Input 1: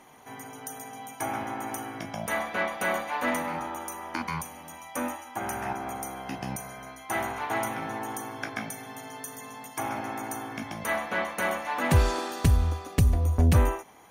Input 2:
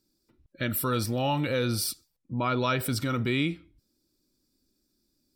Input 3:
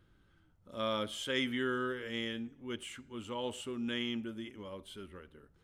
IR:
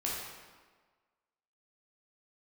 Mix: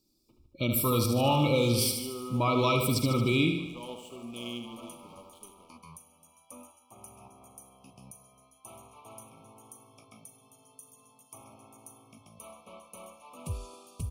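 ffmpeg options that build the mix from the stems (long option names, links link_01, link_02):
-filter_complex "[0:a]equalizer=frequency=100:width_type=o:width=0.33:gain=5,equalizer=frequency=315:width_type=o:width=0.33:gain=-9,equalizer=frequency=800:width_type=o:width=0.33:gain=-9,equalizer=frequency=2000:width_type=o:width=0.33:gain=-9,equalizer=frequency=4000:width_type=o:width=0.33:gain=-4,equalizer=frequency=10000:width_type=o:width=0.33:gain=11,adelay=1550,volume=-16.5dB[link_01];[1:a]volume=1dB,asplit=3[link_02][link_03][link_04];[link_03]volume=-7dB[link_05];[2:a]highshelf=frequency=11000:gain=5.5,aeval=exprs='sgn(val(0))*max(abs(val(0))-0.00355,0)':channel_layout=same,adelay=450,volume=-3dB,asplit=2[link_06][link_07];[link_07]volume=-7.5dB[link_08];[link_04]apad=whole_len=690514[link_09];[link_01][link_09]sidechaincompress=threshold=-32dB:ratio=8:attack=16:release=1360[link_10];[link_05][link_08]amix=inputs=2:normalize=0,aecho=0:1:75|150|225|300|375|450|525|600|675:1|0.57|0.325|0.185|0.106|0.0602|0.0343|0.0195|0.0111[link_11];[link_10][link_02][link_06][link_11]amix=inputs=4:normalize=0,asuperstop=centerf=1700:order=20:qfactor=1.9"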